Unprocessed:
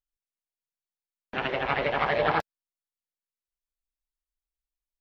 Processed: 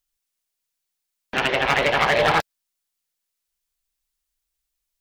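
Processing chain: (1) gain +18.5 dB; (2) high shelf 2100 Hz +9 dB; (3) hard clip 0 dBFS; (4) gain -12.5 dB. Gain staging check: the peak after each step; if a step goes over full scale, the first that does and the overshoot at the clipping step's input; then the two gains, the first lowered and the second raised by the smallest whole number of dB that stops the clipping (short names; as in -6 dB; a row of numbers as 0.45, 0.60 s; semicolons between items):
+7.0, +10.0, 0.0, -12.5 dBFS; step 1, 10.0 dB; step 1 +8.5 dB, step 4 -2.5 dB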